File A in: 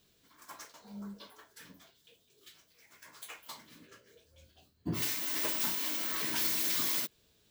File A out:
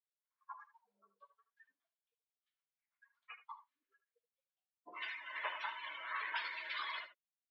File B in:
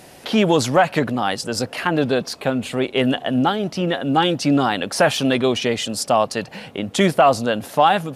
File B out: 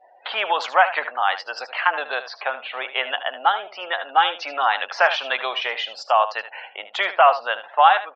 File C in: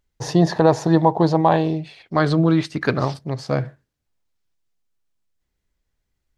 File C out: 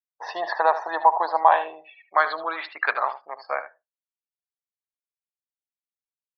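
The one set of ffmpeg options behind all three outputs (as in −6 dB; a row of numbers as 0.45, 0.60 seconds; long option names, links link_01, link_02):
-af "lowpass=2700,afftdn=noise_reduction=36:noise_floor=-42,highpass=frequency=780:width=0.5412,highpass=frequency=780:width=1.3066,aecho=1:1:76:0.224,volume=4dB"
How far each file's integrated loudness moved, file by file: −12.0, −2.0, −4.0 LU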